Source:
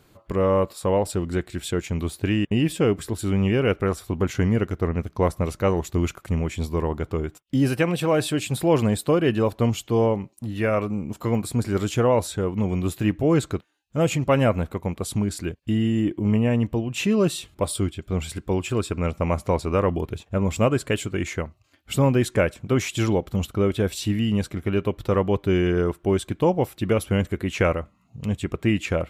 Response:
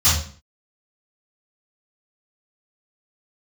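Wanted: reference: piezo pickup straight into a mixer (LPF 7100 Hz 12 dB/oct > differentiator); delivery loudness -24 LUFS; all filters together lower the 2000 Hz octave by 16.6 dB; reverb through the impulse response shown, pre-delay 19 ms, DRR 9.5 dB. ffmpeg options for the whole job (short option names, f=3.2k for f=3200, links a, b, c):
-filter_complex "[0:a]equalizer=f=2k:t=o:g=-8,asplit=2[a][b];[1:a]atrim=start_sample=2205,adelay=19[c];[b][c]afir=irnorm=-1:irlink=0,volume=-28dB[d];[a][d]amix=inputs=2:normalize=0,lowpass=7.1k,aderivative,volume=18.5dB"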